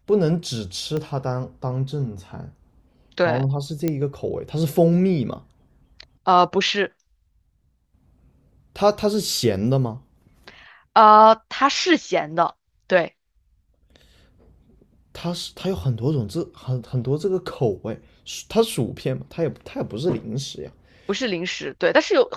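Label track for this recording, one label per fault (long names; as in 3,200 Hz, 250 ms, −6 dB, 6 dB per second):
0.970000	0.970000	click −16 dBFS
3.880000	3.880000	click −10 dBFS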